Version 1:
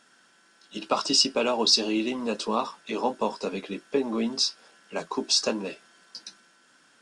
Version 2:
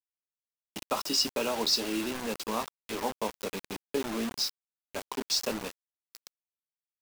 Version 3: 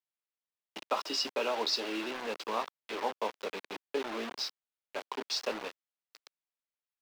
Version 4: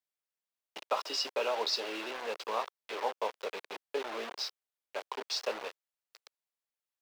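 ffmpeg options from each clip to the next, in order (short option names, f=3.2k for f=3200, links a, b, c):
-af "acrusher=bits=4:mix=0:aa=0.000001,volume=-6dB"
-filter_complex "[0:a]acrossover=split=320 4700:gain=0.126 1 0.141[a][b][c];[a][b][c]amix=inputs=3:normalize=0"
-af "lowshelf=f=360:t=q:w=1.5:g=-7,volume=-1dB"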